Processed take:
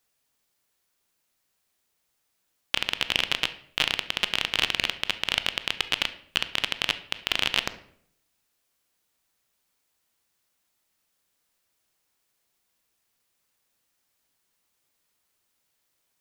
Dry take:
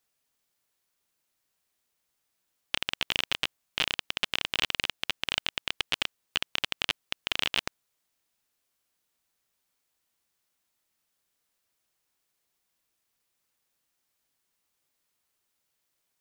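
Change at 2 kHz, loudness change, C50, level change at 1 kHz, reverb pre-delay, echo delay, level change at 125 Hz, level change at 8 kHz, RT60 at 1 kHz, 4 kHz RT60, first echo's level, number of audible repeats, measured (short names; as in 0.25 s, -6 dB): +4.0 dB, +4.0 dB, 13.5 dB, +4.0 dB, 15 ms, none, +4.0 dB, +3.5 dB, 0.55 s, 0.50 s, none, none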